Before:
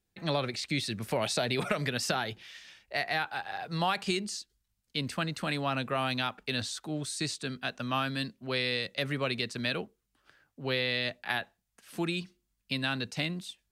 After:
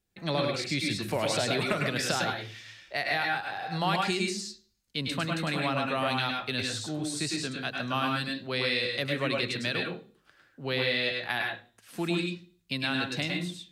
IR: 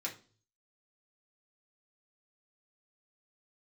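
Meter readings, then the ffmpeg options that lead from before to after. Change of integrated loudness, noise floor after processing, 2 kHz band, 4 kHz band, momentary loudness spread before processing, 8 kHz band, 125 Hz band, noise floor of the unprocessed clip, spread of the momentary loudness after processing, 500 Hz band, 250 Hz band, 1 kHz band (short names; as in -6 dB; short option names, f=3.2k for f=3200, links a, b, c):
+2.5 dB, -68 dBFS, +3.5 dB, +2.5 dB, 8 LU, +2.0 dB, +1.5 dB, -81 dBFS, 9 LU, +2.5 dB, +3.0 dB, +2.5 dB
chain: -filter_complex "[0:a]asplit=2[a][b];[1:a]atrim=start_sample=2205,adelay=102[c];[b][c]afir=irnorm=-1:irlink=0,volume=-1.5dB[d];[a][d]amix=inputs=2:normalize=0"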